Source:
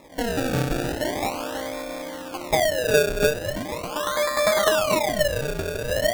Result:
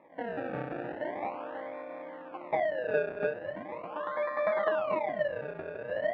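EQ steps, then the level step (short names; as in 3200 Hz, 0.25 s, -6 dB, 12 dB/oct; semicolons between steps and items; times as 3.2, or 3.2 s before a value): speaker cabinet 240–2000 Hz, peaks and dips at 260 Hz -5 dB, 410 Hz -5 dB, 1400 Hz -5 dB; -7.0 dB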